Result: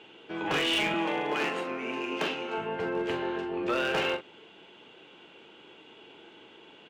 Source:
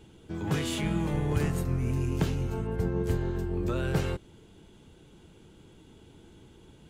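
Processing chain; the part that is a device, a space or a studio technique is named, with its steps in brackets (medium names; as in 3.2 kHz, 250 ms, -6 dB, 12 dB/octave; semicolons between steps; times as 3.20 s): megaphone (band-pass 500–2800 Hz; peaking EQ 2.8 kHz +9 dB 0.58 oct; hard clipper -31 dBFS, distortion -16 dB; doubling 42 ms -8.5 dB); 0.94–2.58 s: high-pass 190 Hz 24 dB/octave; trim +8 dB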